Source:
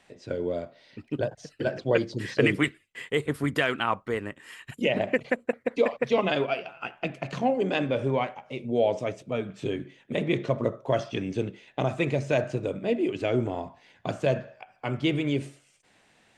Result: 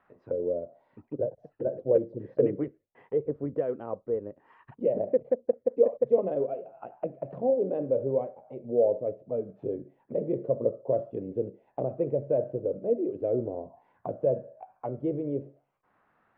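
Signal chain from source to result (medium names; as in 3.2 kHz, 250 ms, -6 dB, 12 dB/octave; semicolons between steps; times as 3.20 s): touch-sensitive low-pass 520–1300 Hz down, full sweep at -29 dBFS; trim -8.5 dB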